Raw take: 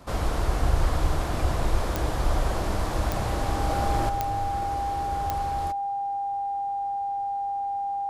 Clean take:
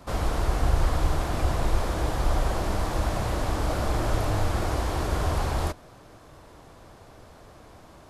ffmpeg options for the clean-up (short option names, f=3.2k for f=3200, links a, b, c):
-af "adeclick=t=4,bandreject=f=800:w=30,asetnsamples=n=441:p=0,asendcmd='4.09 volume volume 7.5dB',volume=0dB"